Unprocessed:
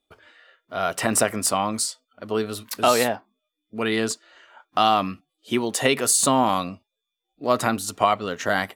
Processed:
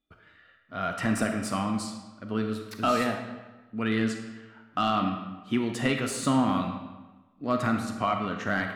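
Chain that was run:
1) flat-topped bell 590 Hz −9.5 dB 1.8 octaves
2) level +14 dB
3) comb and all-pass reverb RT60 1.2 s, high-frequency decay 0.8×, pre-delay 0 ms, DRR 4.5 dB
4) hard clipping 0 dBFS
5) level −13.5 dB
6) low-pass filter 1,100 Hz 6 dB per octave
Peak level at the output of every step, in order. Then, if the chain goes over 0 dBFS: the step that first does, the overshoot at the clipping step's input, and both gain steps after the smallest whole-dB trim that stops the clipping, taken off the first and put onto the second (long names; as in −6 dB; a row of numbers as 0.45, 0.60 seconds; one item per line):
−7.5, +6.5, +7.0, 0.0, −13.5, −14.0 dBFS
step 2, 7.0 dB
step 2 +7 dB, step 5 −6.5 dB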